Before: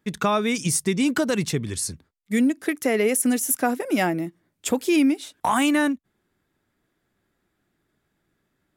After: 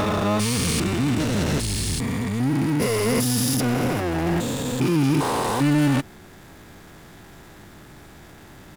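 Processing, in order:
spectrum averaged block by block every 400 ms
power curve on the samples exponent 0.5
pitch-shifted copies added −12 semitones −2 dB
level −3.5 dB

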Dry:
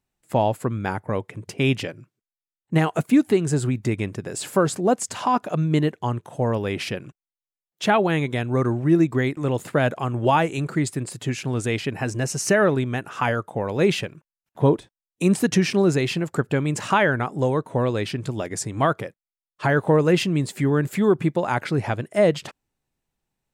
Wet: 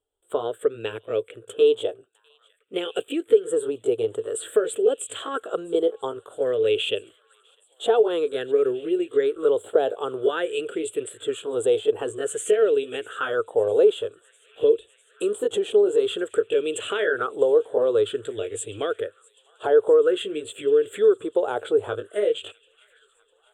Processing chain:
pitch glide at a constant tempo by +2 semitones ending unshifted
dynamic equaliser 440 Hz, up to +7 dB, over −37 dBFS, Q 3.6
downward compressor 4 to 1, threshold −20 dBFS, peak gain reduction 11 dB
drawn EQ curve 100 Hz 0 dB, 150 Hz −25 dB, 450 Hz +13 dB, 920 Hz −13 dB, 1,400 Hz +2 dB, 2,100 Hz −14 dB, 3,400 Hz +10 dB, 5,300 Hz −28 dB, 7,900 Hz +9 dB, 12,000 Hz −7 dB
on a send: delay with a high-pass on its return 652 ms, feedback 79%, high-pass 1,800 Hz, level −23.5 dB
on the sum: auto-filter bell 0.51 Hz 790–2,700 Hz +14 dB
level −5.5 dB

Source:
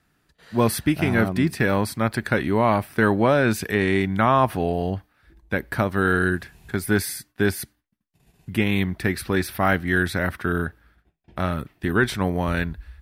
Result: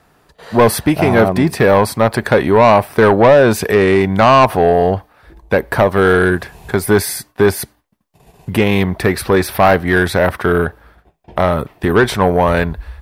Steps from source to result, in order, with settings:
flat-topped bell 680 Hz +9 dB
in parallel at −3 dB: downward compressor, threshold −28 dBFS, peak gain reduction 21 dB
on the sum: soft clipping −9.5 dBFS, distortion −11 dB
level +6.5 dB

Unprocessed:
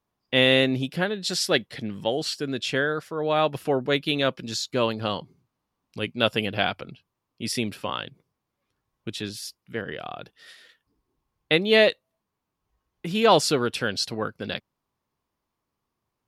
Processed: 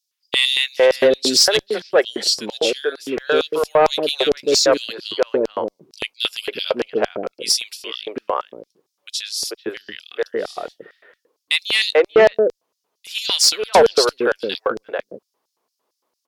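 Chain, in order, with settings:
three-band delay without the direct sound highs, mids, lows 440/590 ms, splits 420/2,000 Hz
auto-filter high-pass square 4.4 Hz 440–5,100 Hz
harmonic generator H 5 −15 dB, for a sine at −5.5 dBFS
level +3.5 dB

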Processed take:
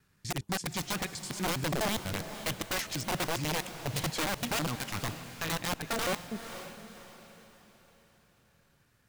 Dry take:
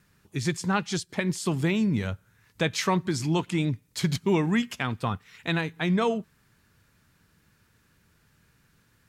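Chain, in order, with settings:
slices reordered back to front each 82 ms, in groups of 3
wrap-around overflow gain 20.5 dB
feedback delay with all-pass diffusion 512 ms, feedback 42%, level −11 dB
level −5.5 dB

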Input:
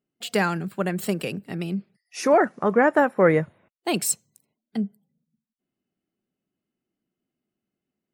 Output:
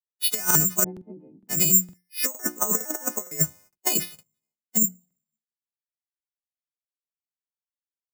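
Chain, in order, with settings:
every partial snapped to a pitch grid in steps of 3 semitones
bad sample-rate conversion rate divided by 6×, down filtered, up zero stuff
0:00.84–0:01.49: formant resonators in series u
mains-hum notches 60/120/180/240/300/360 Hz
compressor whose output falls as the input rises −17 dBFS, ratio −0.5
regular buffer underruns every 0.46 s, samples 2,048, repeat, from 0:00.46
multiband upward and downward expander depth 100%
level −5.5 dB

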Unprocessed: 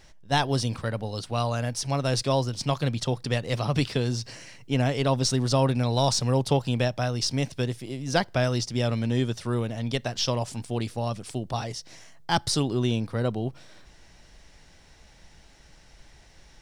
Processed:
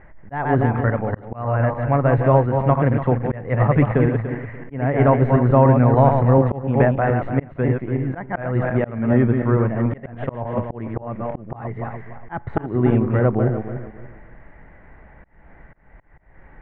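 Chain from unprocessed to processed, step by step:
feedback delay that plays each chunk backwards 145 ms, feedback 51%, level −5.5 dB
volume swells 283 ms
elliptic low-pass filter 2,000 Hz, stop band 60 dB
level +9 dB

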